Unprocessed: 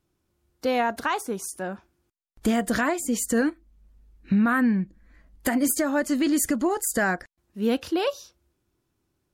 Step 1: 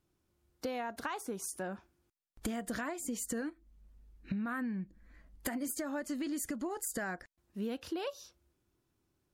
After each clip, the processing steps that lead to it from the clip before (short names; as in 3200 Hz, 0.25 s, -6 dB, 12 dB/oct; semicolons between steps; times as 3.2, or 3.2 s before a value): compressor 6:1, threshold -31 dBFS, peak gain reduction 12.5 dB; gain -4 dB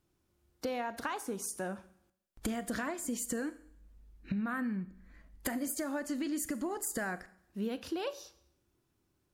Schroeder reverb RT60 0.68 s, combs from 29 ms, DRR 14.5 dB; gain +1.5 dB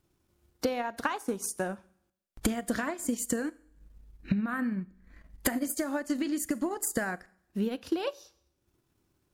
transient shaper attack +5 dB, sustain -7 dB; gain +3.5 dB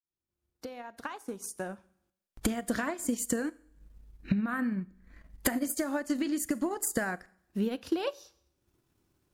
opening faded in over 2.83 s